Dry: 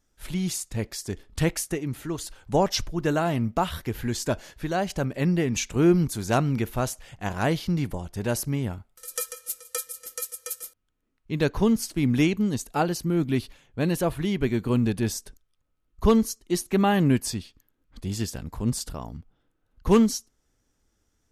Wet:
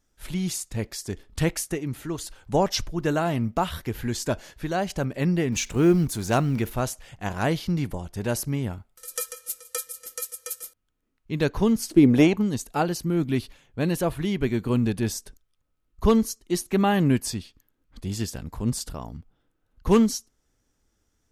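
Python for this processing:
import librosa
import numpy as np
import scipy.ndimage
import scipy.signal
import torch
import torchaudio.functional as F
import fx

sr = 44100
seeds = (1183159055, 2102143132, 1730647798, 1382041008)

y = fx.law_mismatch(x, sr, coded='mu', at=(5.52, 6.73))
y = fx.peak_eq(y, sr, hz=fx.line((11.89, 290.0), (12.41, 950.0)), db=14.5, octaves=1.3, at=(11.89, 12.41), fade=0.02)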